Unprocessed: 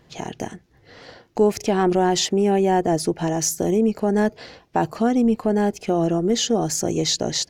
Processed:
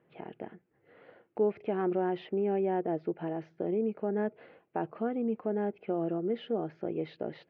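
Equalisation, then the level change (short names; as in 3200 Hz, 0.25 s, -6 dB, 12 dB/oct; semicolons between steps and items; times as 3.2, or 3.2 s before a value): air absorption 290 m; speaker cabinet 230–2500 Hz, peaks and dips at 260 Hz -5 dB, 730 Hz -4 dB, 1000 Hz -6 dB, 1800 Hz -5 dB; -8.0 dB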